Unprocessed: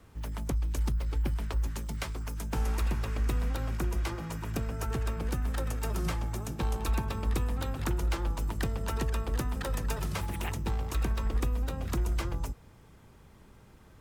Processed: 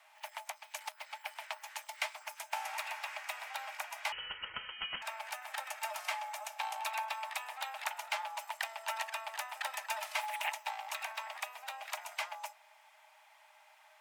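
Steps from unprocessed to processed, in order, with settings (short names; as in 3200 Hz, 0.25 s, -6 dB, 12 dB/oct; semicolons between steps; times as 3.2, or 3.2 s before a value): rippled Chebyshev high-pass 600 Hz, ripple 9 dB; 4.12–5.02 inverted band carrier 3800 Hz; gain +6.5 dB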